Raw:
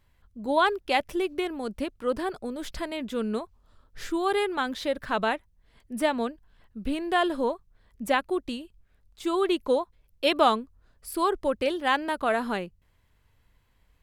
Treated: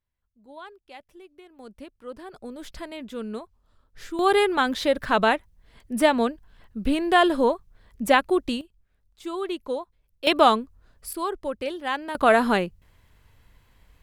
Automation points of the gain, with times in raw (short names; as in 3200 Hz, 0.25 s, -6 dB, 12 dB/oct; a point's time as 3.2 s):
-20 dB
from 1.59 s -11 dB
from 2.33 s -4 dB
from 4.19 s +6 dB
from 8.61 s -5 dB
from 10.27 s +4 dB
from 11.13 s -3.5 dB
from 12.15 s +8 dB